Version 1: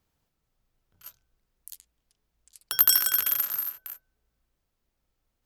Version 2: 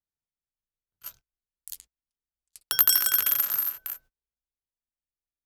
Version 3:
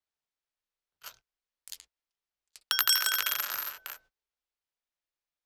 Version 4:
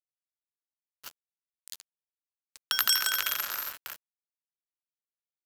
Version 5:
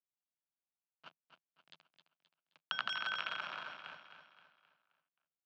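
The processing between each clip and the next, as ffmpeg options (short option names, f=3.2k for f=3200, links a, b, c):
-af "agate=range=-29dB:threshold=-55dB:ratio=16:detection=peak,acompressor=threshold=-30dB:ratio=1.5,volume=5dB"
-filter_complex "[0:a]acrossover=split=370 6300:gain=0.251 1 0.178[a][b][c];[a][b][c]amix=inputs=3:normalize=0,acrossover=split=130|1100[d][e][f];[e]alimiter=level_in=15dB:limit=-24dB:level=0:latency=1:release=442,volume=-15dB[g];[d][g][f]amix=inputs=3:normalize=0,volume=4.5dB"
-af "acrusher=bits=6:mix=0:aa=0.000001"
-filter_complex "[0:a]highpass=f=130:w=0.5412,highpass=f=130:w=1.3066,equalizer=f=160:t=q:w=4:g=7,equalizer=f=440:t=q:w=4:g=-7,equalizer=f=680:t=q:w=4:g=4,equalizer=f=1.9k:t=q:w=4:g=-9,lowpass=f=2.9k:w=0.5412,lowpass=f=2.9k:w=1.3066,asplit=2[a][b];[b]aecho=0:1:263|526|789|1052|1315:0.355|0.16|0.0718|0.0323|0.0145[c];[a][c]amix=inputs=2:normalize=0,volume=-4dB"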